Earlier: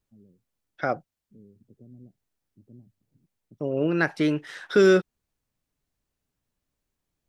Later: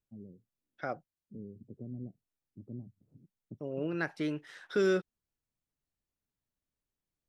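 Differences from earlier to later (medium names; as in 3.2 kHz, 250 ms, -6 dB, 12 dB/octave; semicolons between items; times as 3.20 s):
first voice +6.5 dB; second voice -10.5 dB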